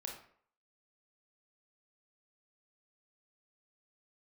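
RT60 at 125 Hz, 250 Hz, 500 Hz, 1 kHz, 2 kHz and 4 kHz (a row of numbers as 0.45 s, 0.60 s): 0.45 s, 0.50 s, 0.55 s, 0.60 s, 0.50 s, 0.40 s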